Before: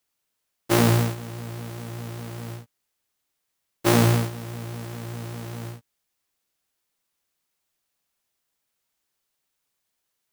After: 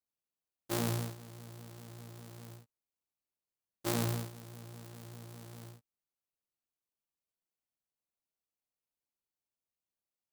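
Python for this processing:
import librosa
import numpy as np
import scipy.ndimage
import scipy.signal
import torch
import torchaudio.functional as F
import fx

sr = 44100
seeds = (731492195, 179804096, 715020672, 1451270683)

y = scipy.signal.medfilt(x, 25)
y = librosa.effects.preemphasis(y, coef=0.8, zi=[0.0])
y = y * 10.0 ** (-1.0 / 20.0)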